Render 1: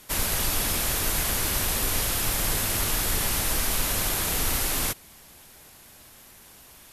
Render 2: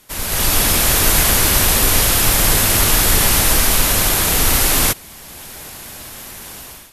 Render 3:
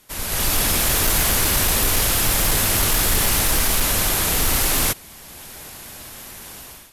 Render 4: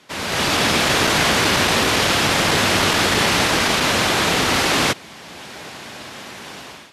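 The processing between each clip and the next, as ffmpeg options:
ffmpeg -i in.wav -af "dynaudnorm=framelen=140:gausssize=5:maxgain=16.5dB" out.wav
ffmpeg -i in.wav -af "volume=9dB,asoftclip=hard,volume=-9dB,volume=-4dB" out.wav
ffmpeg -i in.wav -af "highpass=150,lowpass=4400,volume=7.5dB" out.wav

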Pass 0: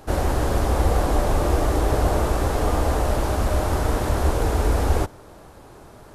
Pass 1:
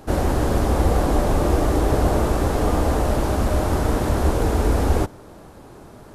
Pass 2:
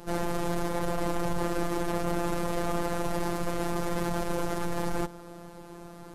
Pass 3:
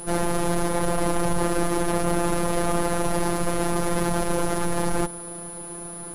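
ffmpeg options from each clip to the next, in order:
ffmpeg -i in.wav -af "equalizer=frequency=220:width=0.8:gain=5.5" out.wav
ffmpeg -i in.wav -af "asoftclip=type=tanh:threshold=-23dB,afftfilt=real='hypot(re,im)*cos(PI*b)':imag='0':win_size=1024:overlap=0.75,volume=1.5dB" out.wav
ffmpeg -i in.wav -af "aeval=exprs='val(0)+0.00794*sin(2*PI*10000*n/s)':channel_layout=same,volume=6dB" out.wav

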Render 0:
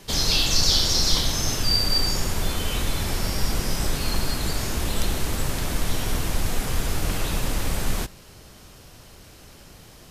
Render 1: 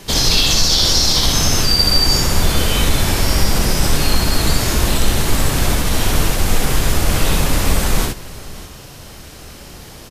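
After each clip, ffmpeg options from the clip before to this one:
ffmpeg -i in.wav -af "alimiter=limit=-14dB:level=0:latency=1:release=60,acontrast=26,aecho=1:1:64|78|601:0.708|0.335|0.133,volume=3.5dB" out.wav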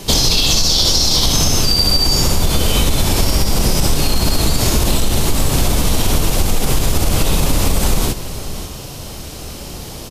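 ffmpeg -i in.wav -af "equalizer=frequency=1700:width=1.5:gain=-7.5,alimiter=limit=-6.5dB:level=0:latency=1:release=49,acompressor=threshold=-17dB:ratio=4,volume=7dB" out.wav

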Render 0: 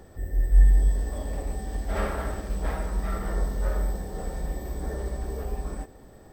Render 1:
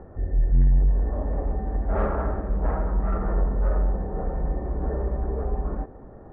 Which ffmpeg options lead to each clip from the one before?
ffmpeg -i in.wav -af "lowpass=frequency=1400:width=0.5412,lowpass=frequency=1400:width=1.3066,aresample=11025,asoftclip=type=tanh:threshold=-19.5dB,aresample=44100,volume=5.5dB" out.wav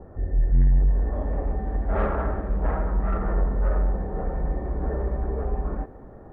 ffmpeg -i in.wav -af "adynamicequalizer=threshold=0.00398:dfrequency=1800:dqfactor=0.7:tfrequency=1800:tqfactor=0.7:attack=5:release=100:ratio=0.375:range=3.5:mode=boostabove:tftype=highshelf" out.wav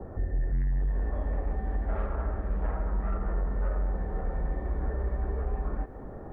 ffmpeg -i in.wav -filter_complex "[0:a]acrossover=split=81|1300[link_01][link_02][link_03];[link_01]acompressor=threshold=-32dB:ratio=4[link_04];[link_02]acompressor=threshold=-42dB:ratio=4[link_05];[link_03]acompressor=threshold=-54dB:ratio=4[link_06];[link_04][link_05][link_06]amix=inputs=3:normalize=0,volume=3.5dB" out.wav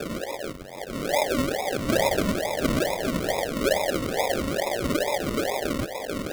ffmpeg -i in.wav -af "highpass=frequency=570:width_type=q:width=4.9,acrusher=samples=42:mix=1:aa=0.000001:lfo=1:lforange=25.2:lforate=2.3,volume=7.5dB" out.wav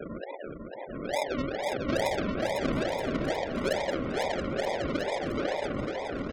ffmpeg -i in.wav -filter_complex "[0:a]afftfilt=real='re*gte(hypot(re,im),0.0316)':imag='im*gte(hypot(re,im),0.0316)':win_size=1024:overlap=0.75,asplit=2[link_01][link_02];[link_02]aecho=0:1:500|925|1286|1593|1854:0.631|0.398|0.251|0.158|0.1[link_03];[link_01][link_03]amix=inputs=2:normalize=0,volume=-6.5dB" out.wav

